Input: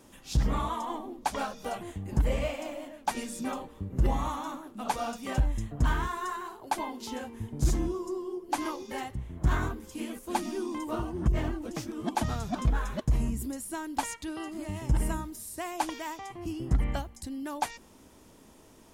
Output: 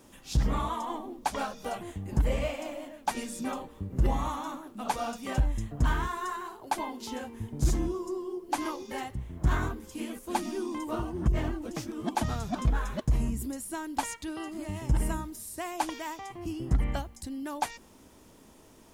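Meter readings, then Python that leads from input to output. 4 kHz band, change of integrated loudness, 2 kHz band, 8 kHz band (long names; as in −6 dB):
0.0 dB, 0.0 dB, 0.0 dB, 0.0 dB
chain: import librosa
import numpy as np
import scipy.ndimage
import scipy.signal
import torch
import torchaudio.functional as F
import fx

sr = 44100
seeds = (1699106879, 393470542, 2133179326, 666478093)

y = fx.quant_dither(x, sr, seeds[0], bits=12, dither='none')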